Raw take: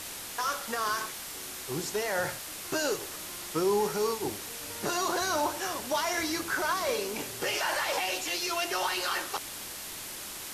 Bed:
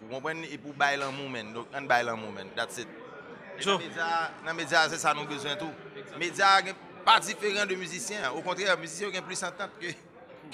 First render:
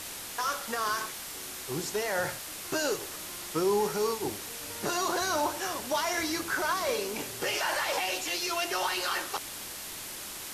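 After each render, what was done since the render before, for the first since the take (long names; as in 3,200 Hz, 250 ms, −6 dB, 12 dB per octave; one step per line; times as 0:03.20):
no processing that can be heard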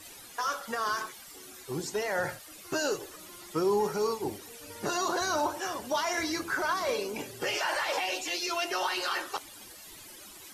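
broadband denoise 14 dB, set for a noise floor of −41 dBFS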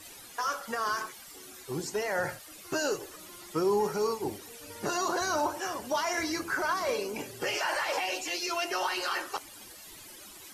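dynamic equaliser 3,600 Hz, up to −6 dB, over −56 dBFS, Q 5.5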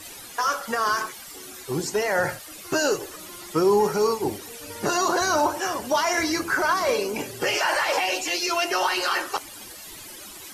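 level +7.5 dB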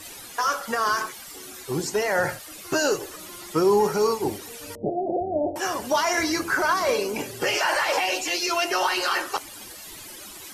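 0:04.75–0:05.56: Butterworth low-pass 760 Hz 96 dB per octave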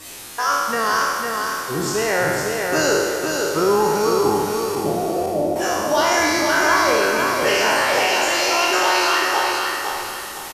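peak hold with a decay on every bin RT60 1.79 s
repeating echo 506 ms, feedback 34%, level −4 dB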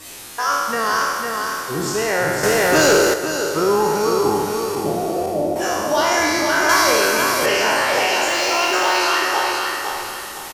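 0:02.43–0:03.14: leveller curve on the samples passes 2
0:06.69–0:07.46: high-shelf EQ 3,700 Hz +9 dB
0:08.28–0:09.00: running median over 3 samples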